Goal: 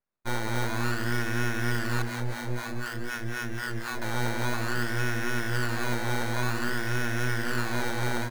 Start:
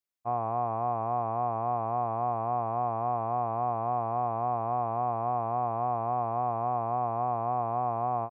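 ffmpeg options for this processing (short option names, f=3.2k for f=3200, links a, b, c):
-filter_complex "[0:a]acrusher=samples=15:mix=1:aa=0.000001:lfo=1:lforange=9:lforate=0.53,highpass=f=360:p=1,highshelf=f=2.2k:g=-9,aeval=exprs='abs(val(0))':c=same,asettb=1/sr,asplit=3[a][b][c];[a]atrim=end=2.024[d];[b]atrim=start=2.02:end=4.02,asetpts=PTS-STARTPTS,afade=t=in:d=0.004:c=qsin,afade=t=out:st=1.996:d=0.004:c=qsin,acrossover=split=650[e][f];[e]aeval=exprs='val(0)*(1-1/2+1/2*cos(2*PI*4*n/s))':c=same[g];[f]aeval=exprs='val(0)*(1-1/2-1/2*cos(2*PI*4*n/s))':c=same[h];[g][h]amix=inputs=2:normalize=0[i];[c]atrim=start=4.016[j];[d][i]acrossfade=d=0.004:c1=hsin:c2=qsin[k];[k][j]acrossfade=d=0.004:c1=qsin:c2=hsin,asplit=6[l][m][n][o][p][q];[m]adelay=180,afreqshift=120,volume=-10dB[r];[n]adelay=360,afreqshift=240,volume=-17.1dB[s];[o]adelay=540,afreqshift=360,volume=-24.3dB[t];[p]adelay=720,afreqshift=480,volume=-31.4dB[u];[q]adelay=900,afreqshift=600,volume=-38.5dB[v];[l][r][s][t][u][v]amix=inputs=6:normalize=0,volume=5.5dB"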